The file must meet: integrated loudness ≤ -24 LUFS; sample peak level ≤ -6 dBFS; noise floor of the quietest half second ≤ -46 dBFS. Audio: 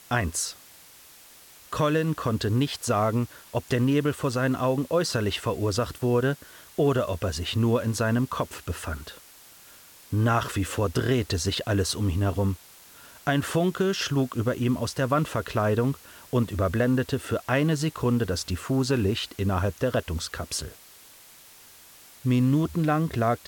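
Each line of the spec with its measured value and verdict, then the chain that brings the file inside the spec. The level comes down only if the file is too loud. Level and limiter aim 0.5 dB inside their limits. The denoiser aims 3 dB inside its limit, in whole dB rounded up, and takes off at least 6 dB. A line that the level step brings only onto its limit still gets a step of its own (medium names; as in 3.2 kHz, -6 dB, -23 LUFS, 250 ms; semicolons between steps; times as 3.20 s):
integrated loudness -26.0 LUFS: pass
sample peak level -11.0 dBFS: pass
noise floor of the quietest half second -51 dBFS: pass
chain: none needed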